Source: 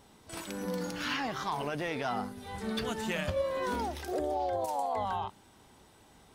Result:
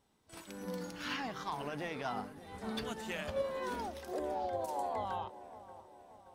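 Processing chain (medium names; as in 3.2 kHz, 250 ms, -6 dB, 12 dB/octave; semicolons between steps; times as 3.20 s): 2.98–4.52 s: peaking EQ 120 Hz -9 dB 1.2 oct; feedback echo behind a low-pass 578 ms, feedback 63%, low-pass 1.5 kHz, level -11 dB; upward expansion 1.5:1, over -53 dBFS; trim -3 dB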